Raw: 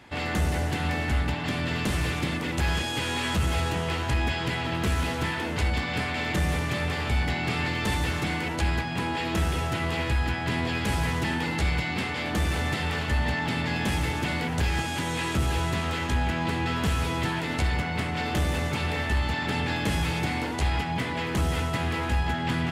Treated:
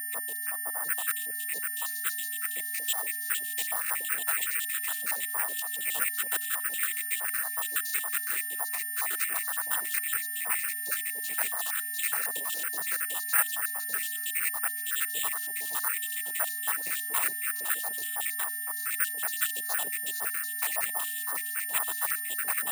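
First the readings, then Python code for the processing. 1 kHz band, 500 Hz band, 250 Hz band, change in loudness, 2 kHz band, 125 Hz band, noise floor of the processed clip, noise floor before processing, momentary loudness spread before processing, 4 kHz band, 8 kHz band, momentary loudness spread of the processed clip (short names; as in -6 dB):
-9.0 dB, -15.5 dB, under -30 dB, -1.0 dB, -2.5 dB, under -40 dB, -35 dBFS, -31 dBFS, 2 LU, -7.5 dB, +10.5 dB, 3 LU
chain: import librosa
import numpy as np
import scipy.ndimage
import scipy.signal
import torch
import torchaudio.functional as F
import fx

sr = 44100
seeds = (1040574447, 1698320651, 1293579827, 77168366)

y = fx.spec_dropout(x, sr, seeds[0], share_pct=84)
y = scipy.signal.sosfilt(scipy.signal.butter(2, 1300.0, 'highpass', fs=sr, output='sos'), y)
y = fx.peak_eq(y, sr, hz=2600.0, db=-2.5, octaves=0.77)
y = fx.notch(y, sr, hz=2600.0, q=17.0)
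y = fx.noise_vocoder(y, sr, seeds[1], bands=12)
y = y + 10.0 ** (-44.0 / 20.0) * np.sin(2.0 * np.pi * 1800.0 * np.arange(len(y)) / sr)
y = fx.air_absorb(y, sr, metres=140.0)
y = fx.echo_wet_highpass(y, sr, ms=409, feedback_pct=68, hz=1900.0, wet_db=-21.0)
y = (np.kron(y[::4], np.eye(4)[0]) * 4)[:len(y)]
y = y * librosa.db_to_amplitude(6.5)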